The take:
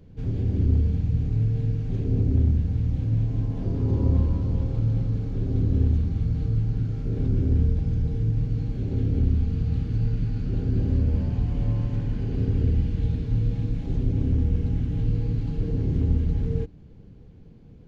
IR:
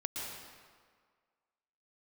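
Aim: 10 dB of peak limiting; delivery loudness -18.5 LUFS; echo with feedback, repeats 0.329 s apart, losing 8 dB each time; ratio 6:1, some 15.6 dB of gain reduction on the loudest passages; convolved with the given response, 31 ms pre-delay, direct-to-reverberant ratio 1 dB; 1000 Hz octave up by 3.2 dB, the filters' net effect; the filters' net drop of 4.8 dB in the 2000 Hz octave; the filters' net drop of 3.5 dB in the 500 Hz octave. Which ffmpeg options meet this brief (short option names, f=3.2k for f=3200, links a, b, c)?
-filter_complex "[0:a]equalizer=f=500:t=o:g=-5.5,equalizer=f=1k:t=o:g=8,equalizer=f=2k:t=o:g=-9,acompressor=threshold=-34dB:ratio=6,alimiter=level_in=11.5dB:limit=-24dB:level=0:latency=1,volume=-11.5dB,aecho=1:1:329|658|987|1316|1645:0.398|0.159|0.0637|0.0255|0.0102,asplit=2[a][b];[1:a]atrim=start_sample=2205,adelay=31[c];[b][c]afir=irnorm=-1:irlink=0,volume=-3dB[d];[a][d]amix=inputs=2:normalize=0,volume=23.5dB"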